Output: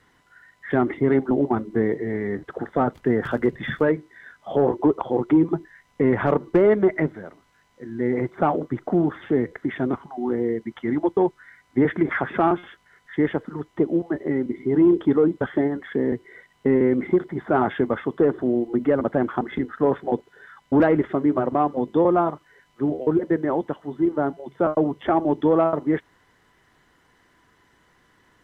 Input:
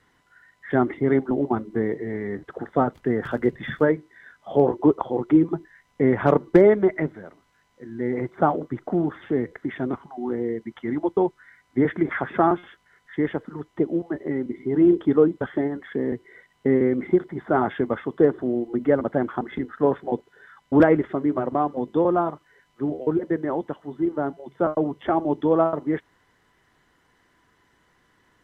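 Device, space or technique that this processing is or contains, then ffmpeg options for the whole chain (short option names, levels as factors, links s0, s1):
soft clipper into limiter: -af "asoftclip=type=tanh:threshold=0.447,alimiter=limit=0.224:level=0:latency=1:release=65,volume=1.41"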